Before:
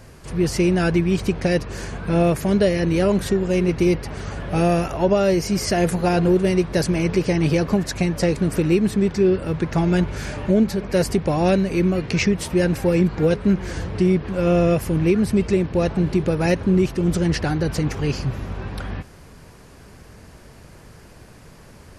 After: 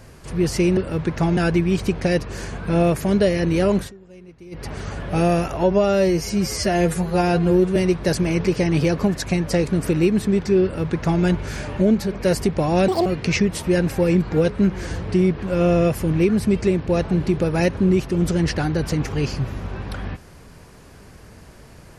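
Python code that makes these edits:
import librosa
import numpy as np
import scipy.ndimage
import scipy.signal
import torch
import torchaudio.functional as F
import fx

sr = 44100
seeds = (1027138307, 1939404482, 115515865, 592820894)

y = fx.edit(x, sr, fx.fade_down_up(start_s=3.18, length_s=0.87, db=-24.0, fade_s=0.14),
    fx.stretch_span(start_s=5.03, length_s=1.42, factor=1.5),
    fx.duplicate(start_s=9.32, length_s=0.6, to_s=0.77),
    fx.speed_span(start_s=11.57, length_s=0.35, speed=1.95), tone=tone)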